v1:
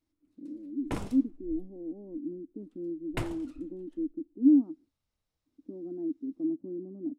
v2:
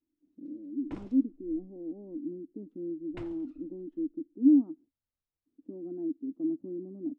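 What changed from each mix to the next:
background -11.0 dB; master: add air absorption 120 m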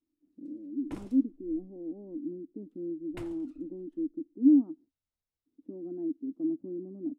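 master: remove air absorption 120 m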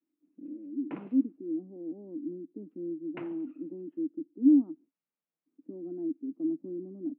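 background +3.5 dB; master: add Chebyshev band-pass 160–2700 Hz, order 4

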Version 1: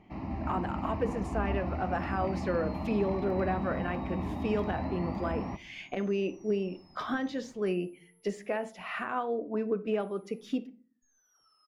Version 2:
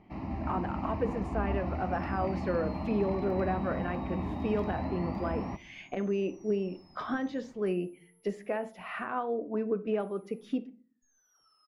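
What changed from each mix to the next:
speech: add high shelf 3700 Hz -11.5 dB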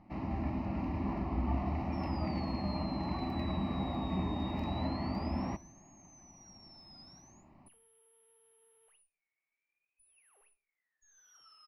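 speech: muted; second sound: add bell 3000 Hz +13.5 dB 2.1 oct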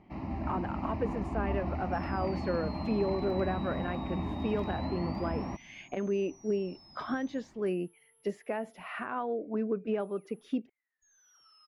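speech: unmuted; reverb: off

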